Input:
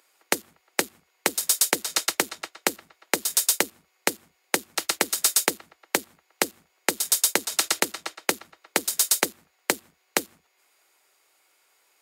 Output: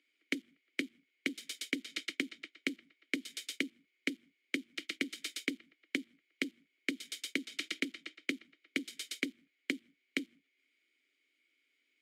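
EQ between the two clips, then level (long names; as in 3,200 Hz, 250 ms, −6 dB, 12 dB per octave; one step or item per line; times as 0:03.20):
formant filter i
+2.5 dB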